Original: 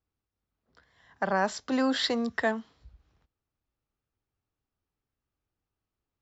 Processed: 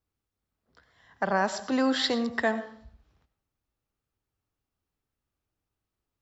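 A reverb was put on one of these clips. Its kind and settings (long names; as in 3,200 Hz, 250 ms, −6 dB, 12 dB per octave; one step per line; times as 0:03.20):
comb and all-pass reverb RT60 0.6 s, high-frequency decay 0.6×, pre-delay 50 ms, DRR 12 dB
level +1 dB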